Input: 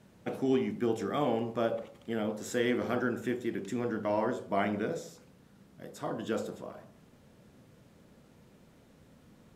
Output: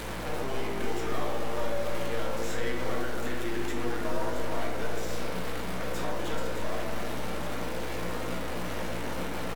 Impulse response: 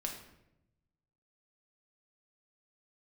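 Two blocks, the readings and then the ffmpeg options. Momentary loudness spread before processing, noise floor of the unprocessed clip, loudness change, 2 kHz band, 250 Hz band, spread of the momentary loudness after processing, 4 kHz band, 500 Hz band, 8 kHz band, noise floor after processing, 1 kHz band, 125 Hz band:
11 LU, −60 dBFS, −1.0 dB, +5.0 dB, −2.0 dB, 3 LU, +7.5 dB, 0.0 dB, +7.5 dB, −31 dBFS, +3.5 dB, +5.0 dB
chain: -filter_complex "[0:a]aeval=exprs='val(0)+0.5*0.0266*sgn(val(0))':channel_layout=same,highpass=350,acrossover=split=670|3200[link_01][link_02][link_03];[link_01]acompressor=threshold=-43dB:ratio=4[link_04];[link_02]acompressor=threshold=-42dB:ratio=4[link_05];[link_03]acompressor=threshold=-51dB:ratio=4[link_06];[link_04][link_05][link_06]amix=inputs=3:normalize=0,aeval=exprs='clip(val(0),-1,0.00631)':channel_layout=same,asplit=2[link_07][link_08];[link_08]adelay=17,volume=-10.5dB[link_09];[link_07][link_09]amix=inputs=2:normalize=0,asplit=2[link_10][link_11];[link_11]adelay=277,lowpass=frequency=870:poles=1,volume=-4dB,asplit=2[link_12][link_13];[link_13]adelay=277,lowpass=frequency=870:poles=1,volume=0.53,asplit=2[link_14][link_15];[link_15]adelay=277,lowpass=frequency=870:poles=1,volume=0.53,asplit=2[link_16][link_17];[link_17]adelay=277,lowpass=frequency=870:poles=1,volume=0.53,asplit=2[link_18][link_19];[link_19]adelay=277,lowpass=frequency=870:poles=1,volume=0.53,asplit=2[link_20][link_21];[link_21]adelay=277,lowpass=frequency=870:poles=1,volume=0.53,asplit=2[link_22][link_23];[link_23]adelay=277,lowpass=frequency=870:poles=1,volume=0.53[link_24];[link_10][link_12][link_14][link_16][link_18][link_20][link_22][link_24]amix=inputs=8:normalize=0[link_25];[1:a]atrim=start_sample=2205,asetrate=36603,aresample=44100[link_26];[link_25][link_26]afir=irnorm=-1:irlink=0,aeval=exprs='val(0)+0.00501*(sin(2*PI*60*n/s)+sin(2*PI*2*60*n/s)/2+sin(2*PI*3*60*n/s)/3+sin(2*PI*4*60*n/s)/4+sin(2*PI*5*60*n/s)/5)':channel_layout=same,volume=5.5dB"

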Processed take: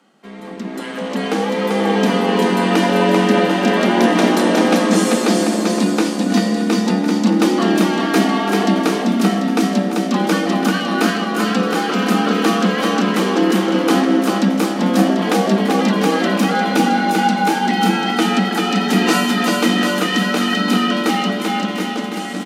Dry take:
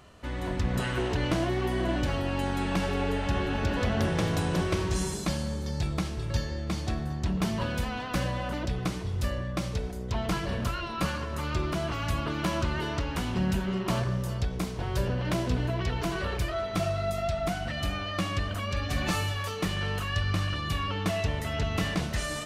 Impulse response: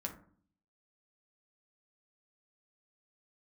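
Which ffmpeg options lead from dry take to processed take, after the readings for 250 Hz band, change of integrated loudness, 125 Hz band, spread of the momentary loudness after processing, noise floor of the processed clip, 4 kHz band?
+17.5 dB, +14.0 dB, +4.0 dB, 4 LU, −25 dBFS, +13.5 dB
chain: -filter_complex "[0:a]dynaudnorm=framelen=160:gausssize=17:maxgain=13dB,aecho=1:1:390|741|1057|1341|1597:0.631|0.398|0.251|0.158|0.1,afreqshift=140,asplit=2[link_01][link_02];[link_02]aeval=exprs='sgn(val(0))*max(abs(val(0))-0.0178,0)':channel_layout=same,volume=-8dB[link_03];[link_01][link_03]amix=inputs=2:normalize=0,volume=-3dB"

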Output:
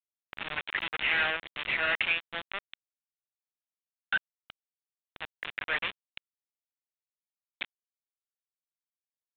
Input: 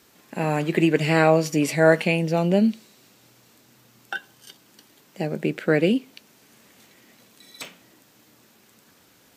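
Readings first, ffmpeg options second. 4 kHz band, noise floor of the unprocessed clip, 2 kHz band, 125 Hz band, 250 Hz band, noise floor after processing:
0.0 dB, −57 dBFS, −1.5 dB, −29.0 dB, −30.0 dB, below −85 dBFS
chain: -af "aresample=11025,asoftclip=type=tanh:threshold=-20dB,aresample=44100,highpass=frequency=1700:width_type=q:width=1.5,acompressor=mode=upward:threshold=-39dB:ratio=2.5,acrusher=bits=4:mix=0:aa=0.000001,aresample=8000,aresample=44100,volume=1.5dB"

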